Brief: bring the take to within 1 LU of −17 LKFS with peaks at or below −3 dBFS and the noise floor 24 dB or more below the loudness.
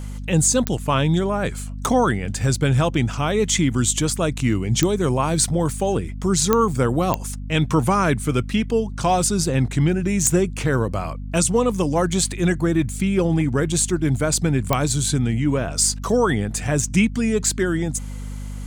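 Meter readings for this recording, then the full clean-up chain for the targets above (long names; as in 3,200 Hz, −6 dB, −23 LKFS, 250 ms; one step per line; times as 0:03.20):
number of clicks 6; mains hum 50 Hz; hum harmonics up to 250 Hz; level of the hum −29 dBFS; integrated loudness −20.5 LKFS; sample peak −3.0 dBFS; target loudness −17.0 LKFS
→ click removal
hum removal 50 Hz, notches 5
level +3.5 dB
brickwall limiter −3 dBFS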